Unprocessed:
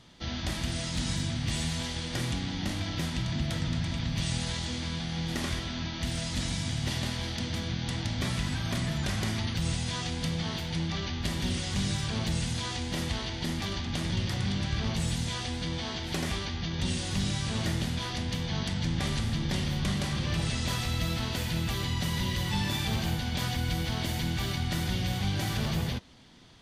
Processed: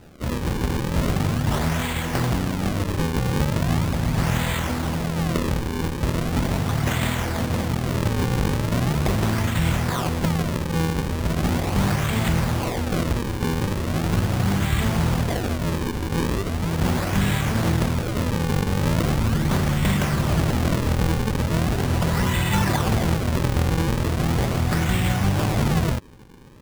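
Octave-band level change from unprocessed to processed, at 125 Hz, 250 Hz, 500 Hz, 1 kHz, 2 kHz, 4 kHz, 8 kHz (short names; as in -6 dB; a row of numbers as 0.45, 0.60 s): +9.0, +9.5, +13.0, +11.5, +7.5, +0.5, +4.5 dB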